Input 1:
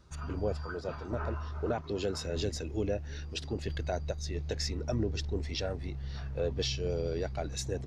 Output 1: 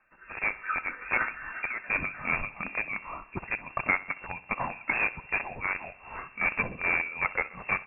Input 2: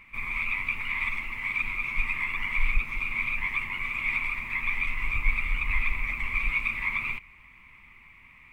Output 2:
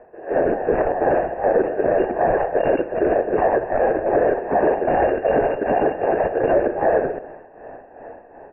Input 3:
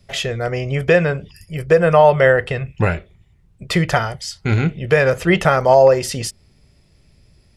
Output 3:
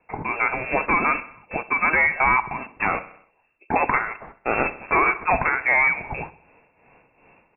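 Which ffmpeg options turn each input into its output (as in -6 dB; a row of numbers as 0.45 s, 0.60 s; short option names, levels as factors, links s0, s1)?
-filter_complex "[0:a]tremolo=f=2.6:d=0.71,asplit=2[s0][s1];[s1]acrusher=bits=4:mix=0:aa=0.000001,volume=0.355[s2];[s0][s2]amix=inputs=2:normalize=0,dynaudnorm=f=270:g=3:m=3.55,aresample=16000,volume=2.99,asoftclip=hard,volume=0.335,aresample=44100,aderivative,bandreject=f=1400:w=23,aecho=1:1:64|128|192|256|320:0.126|0.0692|0.0381|0.0209|0.0115,lowpass=f=2400:t=q:w=0.5098,lowpass=f=2400:t=q:w=0.6013,lowpass=f=2400:t=q:w=0.9,lowpass=f=2400:t=q:w=2.563,afreqshift=-2800,lowshelf=f=66:g=8.5,alimiter=level_in=18.8:limit=0.891:release=50:level=0:latency=1,volume=0.398"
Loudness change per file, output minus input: +5.0 LU, +8.5 LU, -5.0 LU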